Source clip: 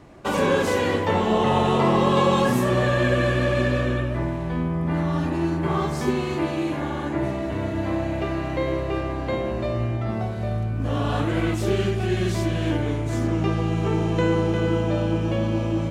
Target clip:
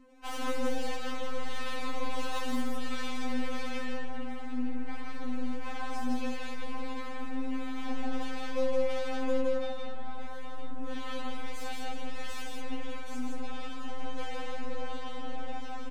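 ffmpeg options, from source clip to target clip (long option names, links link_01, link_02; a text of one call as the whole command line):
ffmpeg -i in.wav -filter_complex "[0:a]asettb=1/sr,asplit=3[link_01][link_02][link_03];[link_01]atrim=end=7.774[link_04];[link_02]atrim=start=7.77:end=9.41,asetpts=PTS-STARTPTS,afade=type=in:duration=0.004:curve=qsin,afade=type=out:start_time=1.636:duration=0.004:curve=qsin,acontrast=38[link_05];[link_03]atrim=start=9.406[link_06];[link_04][link_05]acrossfade=duration=0.004:curve1=hsin:curve2=qsin[link_07];[link_07][link_06]acrossfade=duration=0.004:curve1=qsin:curve2=hsin,asettb=1/sr,asplit=3[link_08][link_09][link_10];[link_08]atrim=end=14.564[link_11];[link_09]atrim=start=14.56:end=15.18,asetpts=PTS-STARTPTS,afade=type=in:duration=0.004:curve=qsin,afade=type=out:start_time=0.616:duration=0.004:curve=qsin,bandreject=frequency=560:width=12[link_12];[link_10]atrim=start=15.176[link_13];[link_11][link_12]acrossfade=duration=0.004:curve1=hsin:curve2=qsin[link_14];[link_14][link_13]acrossfade=duration=0.004:curve1=qsin:curve2=hsin,aeval=exprs='(tanh(31.6*val(0)+0.75)-tanh(0.75))/31.6':channel_layout=same,acrossover=split=800[link_15][link_16];[link_15]aeval=exprs='val(0)*(1-0.5/2+0.5/2*cos(2*PI*1.5*n/s))':channel_layout=same[link_17];[link_16]aeval=exprs='val(0)*(1-0.5/2-0.5/2*cos(2*PI*1.5*n/s))':channel_layout=same[link_18];[link_17][link_18]amix=inputs=2:normalize=0,aecho=1:1:163:0.708,afftfilt=real='re*3.46*eq(mod(b,12),0)':imag='im*3.46*eq(mod(b,12),0)':win_size=2048:overlap=0.75" out.wav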